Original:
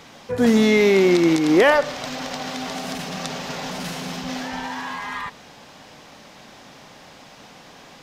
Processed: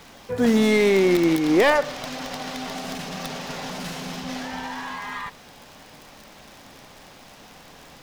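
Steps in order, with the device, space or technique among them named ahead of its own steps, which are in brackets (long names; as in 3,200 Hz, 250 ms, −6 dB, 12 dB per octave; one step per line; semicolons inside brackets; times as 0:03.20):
record under a worn stylus (stylus tracing distortion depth 0.17 ms; surface crackle 70 per second −32 dBFS; pink noise bed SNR 30 dB)
level −2.5 dB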